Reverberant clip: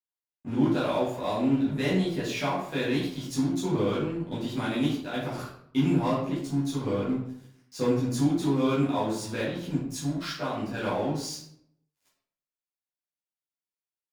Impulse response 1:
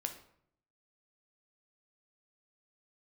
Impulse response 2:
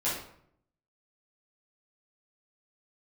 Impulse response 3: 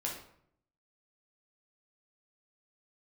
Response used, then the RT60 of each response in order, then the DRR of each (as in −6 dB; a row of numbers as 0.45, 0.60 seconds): 2; 0.65, 0.65, 0.65 seconds; 5.0, −10.5, −3.0 decibels